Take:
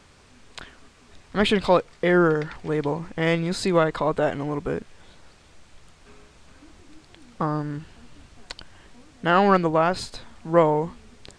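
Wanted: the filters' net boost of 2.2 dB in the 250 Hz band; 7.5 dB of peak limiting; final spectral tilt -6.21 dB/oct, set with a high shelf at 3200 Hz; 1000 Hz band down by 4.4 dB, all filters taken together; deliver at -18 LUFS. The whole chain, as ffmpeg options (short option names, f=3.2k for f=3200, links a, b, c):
-af "equalizer=f=250:t=o:g=4,equalizer=f=1k:t=o:g=-5,highshelf=f=3.2k:g=-8.5,volume=7.5dB,alimiter=limit=-5dB:level=0:latency=1"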